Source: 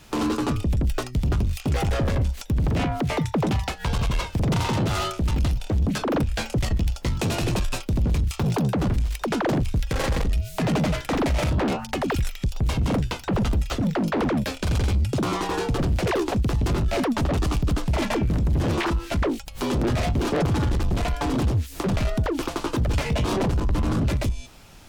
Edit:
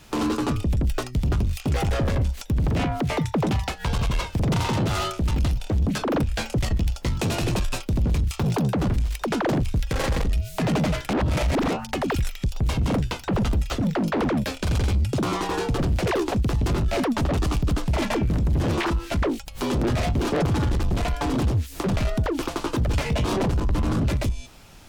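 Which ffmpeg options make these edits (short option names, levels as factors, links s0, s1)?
-filter_complex "[0:a]asplit=3[s0][s1][s2];[s0]atrim=end=11.102[s3];[s1]atrim=start=11.098:end=11.712,asetpts=PTS-STARTPTS,areverse[s4];[s2]atrim=start=11.708[s5];[s3][s4]acrossfade=d=0.004:c1=hsin:c2=hsin[s6];[s6][s5]acrossfade=d=0.004:c1=hsin:c2=hsin"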